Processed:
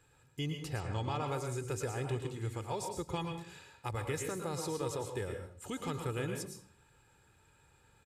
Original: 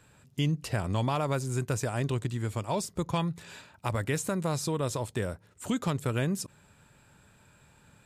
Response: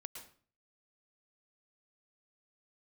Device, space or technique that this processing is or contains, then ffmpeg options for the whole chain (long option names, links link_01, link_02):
microphone above a desk: -filter_complex "[0:a]aecho=1:1:2.4:0.55[link_01];[1:a]atrim=start_sample=2205[link_02];[link_01][link_02]afir=irnorm=-1:irlink=0,asettb=1/sr,asplit=3[link_03][link_04][link_05];[link_03]atrim=end=0.804[link_06];[link_04]atrim=start=0.8:end=1.28,asetpts=PTS-STARTPTS,afade=type=in:duration=0.004:curve=qsin,afade=type=out:start_time=0.476:duration=0.004:curve=qsin,lowpass=frequency=7900:width=0.5412,lowpass=frequency=7900:width=1.3066[link_07];[link_05]atrim=start=1.276[link_08];[link_06][link_07]acrossfade=duration=0.004:curve1=hsin:curve2=qsin[link_09];[link_09][link_08]acrossfade=duration=0.004:curve1=qsin:curve2=hsin,volume=-2.5dB"